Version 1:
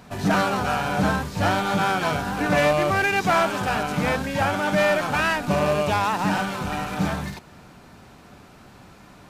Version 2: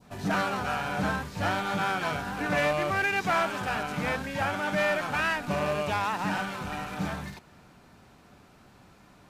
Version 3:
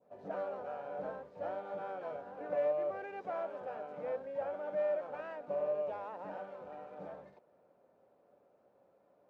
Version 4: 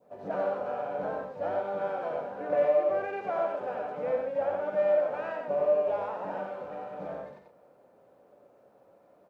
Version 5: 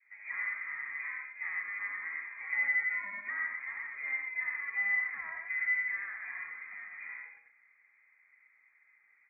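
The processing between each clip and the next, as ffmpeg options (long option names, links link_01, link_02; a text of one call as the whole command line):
ffmpeg -i in.wav -af "adynamicequalizer=threshold=0.0282:dfrequency=1900:dqfactor=0.83:tfrequency=1900:tqfactor=0.83:attack=5:release=100:ratio=0.375:range=2:mode=boostabove:tftype=bell,volume=-8dB" out.wav
ffmpeg -i in.wav -af "bandpass=frequency=540:width_type=q:width=5.4:csg=0" out.wav
ffmpeg -i in.wav -af "aecho=1:1:90.38|122.4:0.631|0.316,volume=7dB" out.wav
ffmpeg -i in.wav -af "lowpass=frequency=2200:width_type=q:width=0.5098,lowpass=frequency=2200:width_type=q:width=0.6013,lowpass=frequency=2200:width_type=q:width=0.9,lowpass=frequency=2200:width_type=q:width=2.563,afreqshift=-2600,volume=-6.5dB" out.wav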